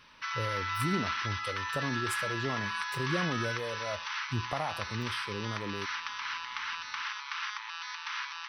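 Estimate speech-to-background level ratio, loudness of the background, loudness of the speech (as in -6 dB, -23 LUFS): -2.5 dB, -35.0 LUFS, -37.5 LUFS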